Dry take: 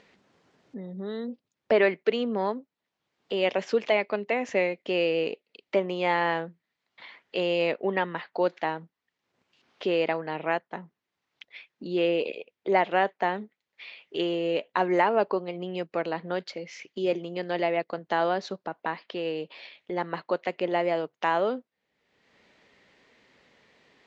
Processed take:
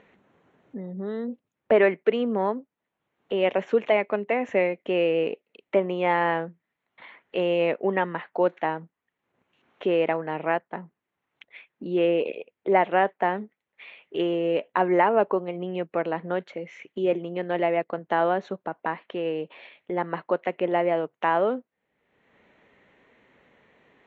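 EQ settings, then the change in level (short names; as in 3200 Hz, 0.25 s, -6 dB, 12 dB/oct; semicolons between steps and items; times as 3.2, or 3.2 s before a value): running mean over 9 samples; +3.0 dB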